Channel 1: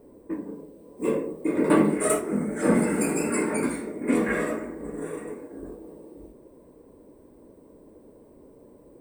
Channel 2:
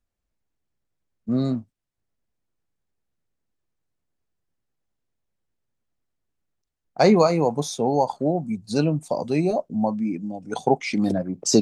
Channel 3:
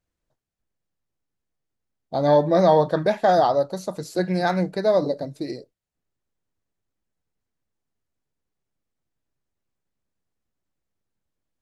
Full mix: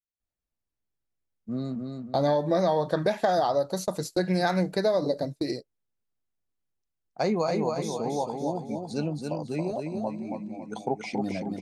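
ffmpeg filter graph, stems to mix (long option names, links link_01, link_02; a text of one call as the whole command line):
ffmpeg -i stem1.wav -i stem2.wav -i stem3.wav -filter_complex "[1:a]adelay=200,volume=-9dB,asplit=2[link_01][link_02];[link_02]volume=-4.5dB[link_03];[2:a]agate=range=-27dB:threshold=-34dB:ratio=16:detection=peak,highshelf=frequency=4200:gain=6.5,volume=0.5dB[link_04];[link_03]aecho=0:1:276|552|828|1104|1380|1656:1|0.4|0.16|0.064|0.0256|0.0102[link_05];[link_01][link_04][link_05]amix=inputs=3:normalize=0,acompressor=threshold=-20dB:ratio=12" out.wav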